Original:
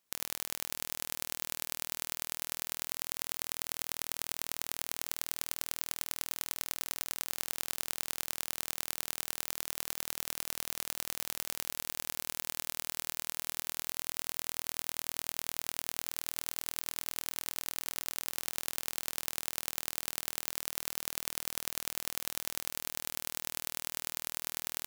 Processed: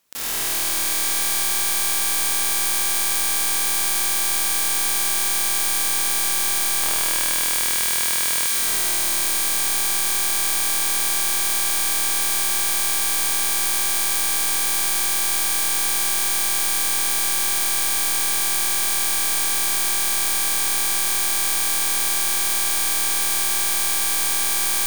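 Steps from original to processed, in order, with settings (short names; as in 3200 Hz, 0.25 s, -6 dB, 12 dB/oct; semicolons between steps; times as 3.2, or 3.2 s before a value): sample leveller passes 3; 6.83–8.47 HPF 1300 Hz 12 dB/oct; Schroeder reverb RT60 3.8 s, combs from 28 ms, DRR 2 dB; sine folder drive 18 dB, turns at -4.5 dBFS; gain -4.5 dB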